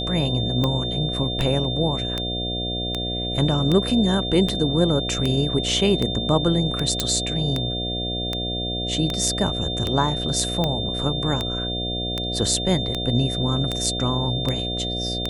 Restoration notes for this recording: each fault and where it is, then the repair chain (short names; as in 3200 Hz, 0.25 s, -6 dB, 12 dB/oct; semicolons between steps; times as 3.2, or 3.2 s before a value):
buzz 60 Hz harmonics 12 -29 dBFS
tick 78 rpm -10 dBFS
tone 3600 Hz -27 dBFS
7 pop -4 dBFS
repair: de-click; de-hum 60 Hz, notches 12; notch 3600 Hz, Q 30